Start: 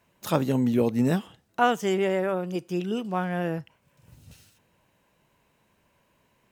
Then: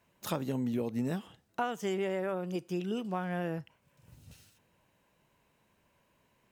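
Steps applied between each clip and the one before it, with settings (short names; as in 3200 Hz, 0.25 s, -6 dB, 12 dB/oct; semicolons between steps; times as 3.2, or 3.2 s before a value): compressor 6:1, threshold -25 dBFS, peak gain reduction 9.5 dB; gain -4 dB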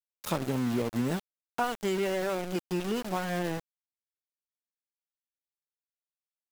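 sample gate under -36.5 dBFS; gain +3.5 dB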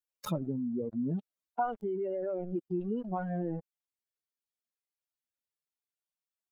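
spectral contrast raised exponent 2.5; vocal rider 0.5 s; gain -2.5 dB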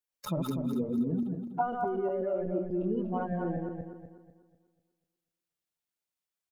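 regenerating reverse delay 0.123 s, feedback 60%, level -2.5 dB; outdoor echo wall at 35 m, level -23 dB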